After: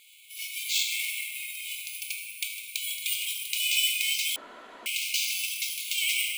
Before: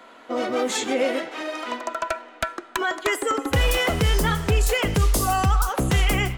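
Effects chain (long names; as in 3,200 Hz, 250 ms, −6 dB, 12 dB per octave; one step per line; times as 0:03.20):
0:01.05–0:01.64: spectral tilt −2.5 dB per octave
rectangular room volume 190 cubic metres, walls hard, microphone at 0.58 metres
bad sample-rate conversion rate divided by 4×, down none, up hold
linear-phase brick-wall high-pass 2,100 Hz
0:04.36–0:04.86: fill with room tone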